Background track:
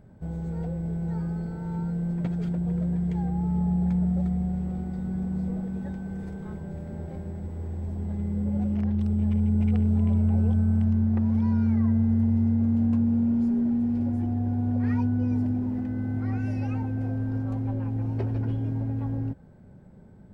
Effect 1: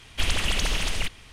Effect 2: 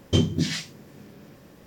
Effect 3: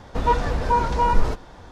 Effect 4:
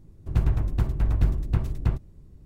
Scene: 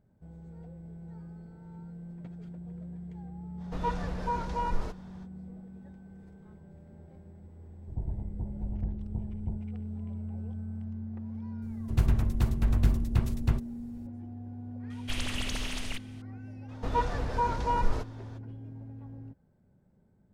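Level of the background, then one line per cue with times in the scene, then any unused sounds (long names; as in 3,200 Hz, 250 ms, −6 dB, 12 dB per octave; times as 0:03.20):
background track −15.5 dB
0:03.57: mix in 3 −12 dB, fades 0.05 s
0:07.61: mix in 4 −12.5 dB + Butterworth low-pass 950 Hz 96 dB per octave
0:11.62: mix in 4 −2.5 dB + high-shelf EQ 2,800 Hz +9 dB
0:14.90: mix in 1 −9 dB
0:16.68: mix in 3 −8.5 dB, fades 0.02 s
not used: 2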